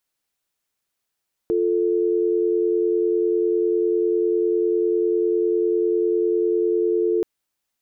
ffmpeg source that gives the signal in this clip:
-f lavfi -i "aevalsrc='0.1*(sin(2*PI*350*t)+sin(2*PI*440*t))':d=5.73:s=44100"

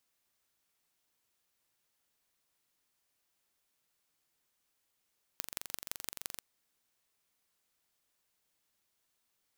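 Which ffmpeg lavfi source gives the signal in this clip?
-f lavfi -i "aevalsrc='0.376*eq(mod(n,1893),0)*(0.5+0.5*eq(mod(n,7572),0))':d=1.01:s=44100"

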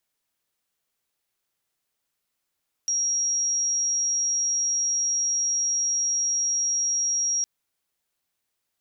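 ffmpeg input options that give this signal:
-f lavfi -i "sine=f=5650:d=4.56:r=44100,volume=-3.44dB"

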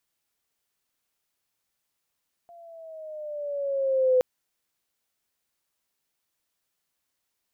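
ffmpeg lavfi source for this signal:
-f lavfi -i "aevalsrc='pow(10,(-16+30*(t/1.72-1))/20)*sin(2*PI*693*1.72/(-5.5*log(2)/12)*(exp(-5.5*log(2)/12*t/1.72)-1))':d=1.72:s=44100"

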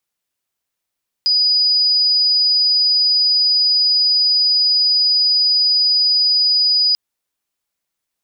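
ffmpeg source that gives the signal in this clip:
-f lavfi -i "aevalsrc='0.266*sin(2*PI*4940*t)':d=5.69:s=44100"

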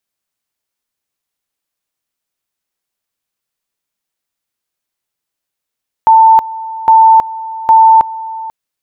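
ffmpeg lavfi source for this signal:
-f lavfi -i "aevalsrc='pow(10,(-2-18*gte(mod(t,0.81),0.32))/20)*sin(2*PI*892*t)':d=2.43:s=44100"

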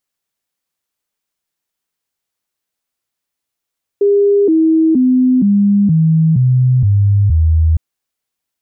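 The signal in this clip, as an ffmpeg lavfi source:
-f lavfi -i "aevalsrc='0.422*clip(min(mod(t,0.47),0.47-mod(t,0.47))/0.005,0,1)*sin(2*PI*404*pow(2,-floor(t/0.47)/3)*mod(t,0.47))':d=3.76:s=44100"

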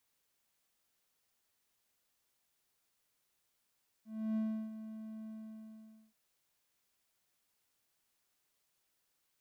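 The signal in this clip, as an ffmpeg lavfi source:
-f lavfi -i "aevalsrc='0.0355*(1-4*abs(mod(219*t+0.25,1)-0.5))':d=2.08:s=44100,afade=t=in:d=0.312,afade=t=out:st=0.312:d=0.34:silence=0.237,afade=t=out:st=1.22:d=0.86"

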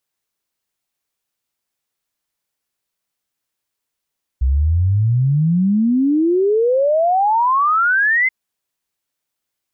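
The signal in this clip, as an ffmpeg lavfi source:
-f lavfi -i "aevalsrc='0.251*clip(min(t,3.88-t)/0.01,0,1)*sin(2*PI*62*3.88/log(2100/62)*(exp(log(2100/62)*t/3.88)-1))':d=3.88:s=44100"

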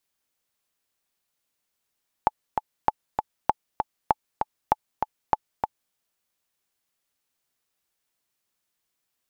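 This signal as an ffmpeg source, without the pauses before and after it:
-f lavfi -i "aevalsrc='pow(10,(-5-5*gte(mod(t,2*60/196),60/196))/20)*sin(2*PI*861*mod(t,60/196))*exp(-6.91*mod(t,60/196)/0.03)':d=3.67:s=44100"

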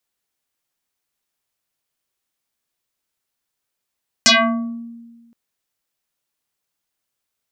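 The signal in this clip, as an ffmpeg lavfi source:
-f lavfi -i "aevalsrc='0.447*pow(10,-3*t/1.49)*sin(2*PI*233*t+8*pow(10,-3*t/0.67)*sin(2*PI*3.87*233*t))':d=1.07:s=44100"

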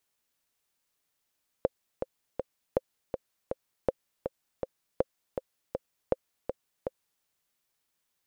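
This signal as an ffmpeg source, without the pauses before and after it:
-f lavfi -i "aevalsrc='pow(10,(-10.5-7*gte(mod(t,3*60/161),60/161))/20)*sin(2*PI*525*mod(t,60/161))*exp(-6.91*mod(t,60/161)/0.03)':d=5.59:s=44100"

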